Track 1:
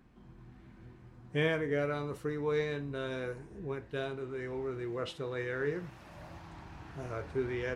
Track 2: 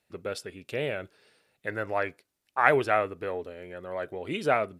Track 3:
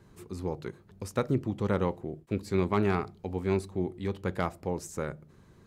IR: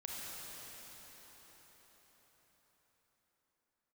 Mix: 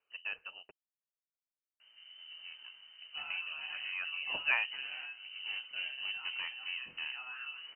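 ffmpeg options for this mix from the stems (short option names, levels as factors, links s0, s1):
-filter_complex "[0:a]acompressor=threshold=0.01:ratio=16,flanger=delay=20:depth=3.8:speed=0.9,adelay=1800,volume=0.531[s0];[1:a]volume=0.211,asplit=3[s1][s2][s3];[s1]atrim=end=0.71,asetpts=PTS-STARTPTS,afade=t=out:st=0.706:d=0.004:c=hsin[s4];[s2]atrim=start=0.71:end=3.3,asetpts=PTS-STARTPTS,volume=0[s5];[s3]atrim=start=3.3,asetpts=PTS-STARTPTS,afade=t=in:d=0.004:c=hsin[s6];[s4][s5][s6]concat=n=3:v=0:a=1[s7];[2:a]asoftclip=type=hard:threshold=0.0398,adelay=2000,volume=0.2,afade=t=in:st=5.29:d=0.49:silence=0.375837[s8];[s0][s7][s8]amix=inputs=3:normalize=0,lowpass=f=2600:t=q:w=0.5098,lowpass=f=2600:t=q:w=0.6013,lowpass=f=2600:t=q:w=0.9,lowpass=f=2600:t=q:w=2.563,afreqshift=-3100,acontrast=81,equalizer=f=170:w=1.5:g=2"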